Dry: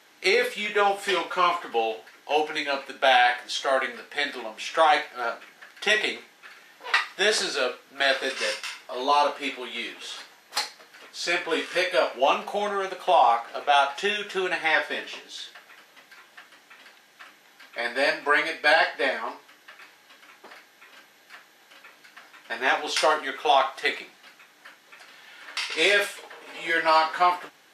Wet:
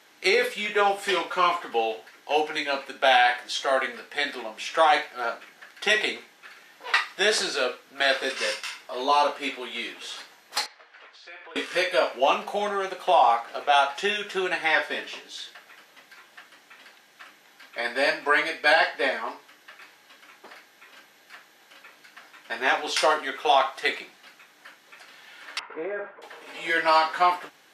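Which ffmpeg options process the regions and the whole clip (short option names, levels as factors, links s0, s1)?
-filter_complex "[0:a]asettb=1/sr,asplit=3[s0][s1][s2];[s0]atrim=end=10.664[s3];[s1]atrim=start=10.66:end=11.56,asetpts=PTS-STARTPTS,afade=t=in:d=0.004:c=qsin,afade=t=out:st=0.896:d=0.004:c=qsin,acompressor=threshold=0.01:ratio=5:attack=3.2:release=140:knee=1:detection=peak,highpass=550,lowpass=2900[s4];[s2]atrim=start=11.556[s5];[s3][s4]acrossfade=d=0.004:c1=hsin:c2=qsin[s6];[s6][s5]acrossfade=d=0.004:c1=qsin:c2=hsin,asettb=1/sr,asplit=3[s7][s8][s9];[s7]atrim=end=25.594[s10];[s8]atrim=start=25.59:end=26.22,asetpts=PTS-STARTPTS,afade=t=in:d=0.004:c=qsin,afade=t=out:st=0.626:d=0.004:c=qsin,lowpass=f=1400:w=0.5412,lowpass=f=1400:w=1.3066,acompressor=threshold=0.0316:ratio=3:attack=3.2:release=140:knee=1:detection=peak[s11];[s9]atrim=start=26.216[s12];[s10][s11]acrossfade=d=0.004:c1=hsin:c2=qsin[s13];[s13][s12]acrossfade=d=0.004:c1=qsin:c2=hsin"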